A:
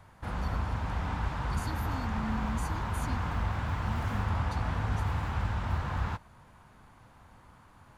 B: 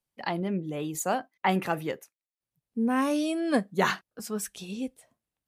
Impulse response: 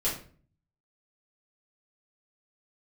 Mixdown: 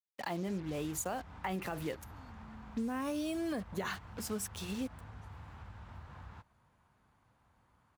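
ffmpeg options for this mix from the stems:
-filter_complex "[0:a]acompressor=threshold=-35dB:ratio=2,adelay=250,volume=-14dB[link_01];[1:a]acrusher=bits=6:mix=0:aa=0.5,alimiter=limit=-20.5dB:level=0:latency=1:release=50,volume=-2dB[link_02];[link_01][link_02]amix=inputs=2:normalize=0,highpass=42,acompressor=threshold=-34dB:ratio=4"

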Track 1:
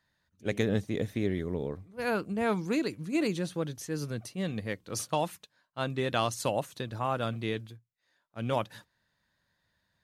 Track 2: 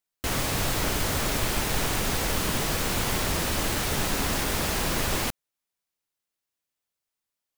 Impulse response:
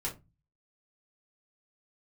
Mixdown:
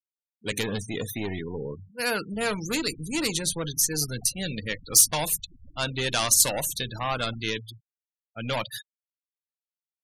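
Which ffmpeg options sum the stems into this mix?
-filter_complex "[0:a]asoftclip=type=tanh:threshold=-27.5dB,crystalizer=i=9:c=0,volume=0.5dB,asplit=2[link_01][link_02];[link_02]volume=-14dB[link_03];[1:a]alimiter=level_in=0.5dB:limit=-24dB:level=0:latency=1:release=331,volume=-0.5dB,adelay=2100,volume=-10.5dB,asplit=2[link_04][link_05];[link_05]volume=-16.5dB[link_06];[2:a]atrim=start_sample=2205[link_07];[link_03][link_06]amix=inputs=2:normalize=0[link_08];[link_08][link_07]afir=irnorm=-1:irlink=0[link_09];[link_01][link_04][link_09]amix=inputs=3:normalize=0,afftfilt=real='re*gte(hypot(re,im),0.0251)':imag='im*gte(hypot(re,im),0.0251)':win_size=1024:overlap=0.75"

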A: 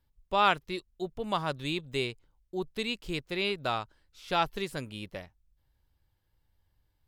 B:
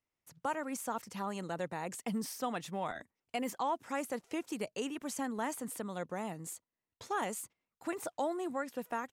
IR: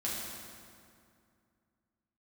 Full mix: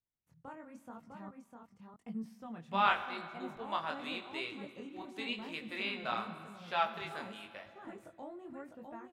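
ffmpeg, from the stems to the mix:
-filter_complex "[0:a]highpass=820,adelay=2400,volume=-1.5dB,asplit=2[link_01][link_02];[link_02]volume=-10dB[link_03];[1:a]volume=-12dB,asplit=3[link_04][link_05][link_06];[link_04]atrim=end=1.29,asetpts=PTS-STARTPTS,afade=type=out:start_time=1.286:duration=0.004:curve=hsin[link_07];[link_05]atrim=start=1.29:end=1.99,asetpts=PTS-STARTPTS,volume=0[link_08];[link_06]atrim=start=1.99,asetpts=PTS-STARTPTS,afade=type=in:duration=0.004:curve=hsin[link_09];[link_07][link_08][link_09]concat=n=3:v=0:a=1,asplit=3[link_10][link_11][link_12];[link_11]volume=-20.5dB[link_13];[link_12]volume=-4dB[link_14];[2:a]atrim=start_sample=2205[link_15];[link_03][link_13]amix=inputs=2:normalize=0[link_16];[link_16][link_15]afir=irnorm=-1:irlink=0[link_17];[link_14]aecho=0:1:652:1[link_18];[link_01][link_10][link_17][link_18]amix=inputs=4:normalize=0,bass=frequency=250:gain=13,treble=frequency=4000:gain=-13,flanger=delay=18:depth=7.8:speed=0.9"

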